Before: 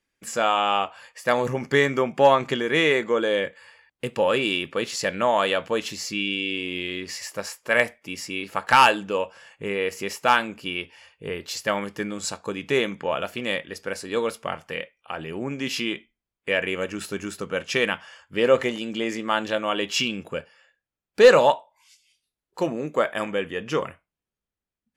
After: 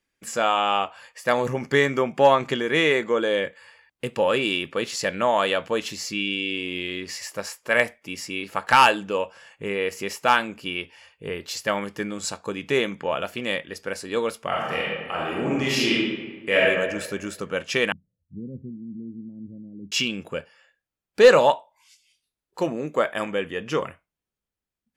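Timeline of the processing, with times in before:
0:14.47–0:16.63: thrown reverb, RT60 1.4 s, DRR −5.5 dB
0:17.92–0:19.92: inverse Chebyshev low-pass filter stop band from 1,000 Hz, stop band 70 dB

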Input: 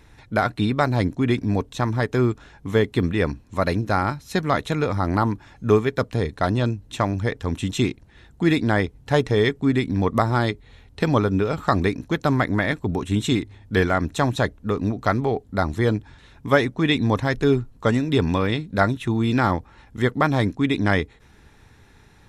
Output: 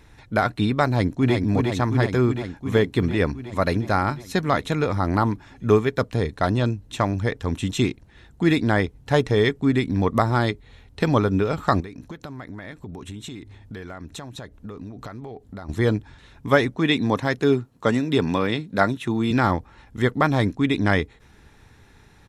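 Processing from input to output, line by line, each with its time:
0:00.86–0:01.34: delay throw 360 ms, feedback 75%, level −4 dB
0:11.80–0:15.69: downward compressor 12 to 1, threshold −32 dBFS
0:16.76–0:19.31: high-pass filter 140 Hz

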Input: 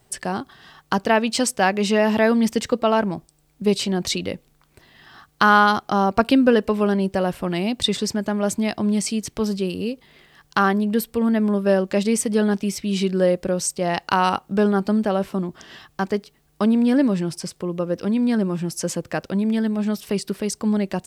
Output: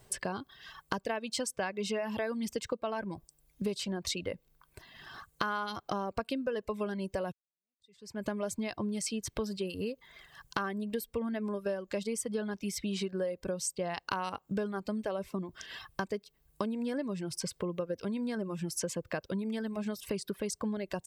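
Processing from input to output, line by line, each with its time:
0:07.32–0:08.29: fade in exponential
whole clip: comb filter 1.9 ms, depth 30%; reverb reduction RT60 0.83 s; downward compressor 6 to 1, threshold −31 dBFS; level −1 dB

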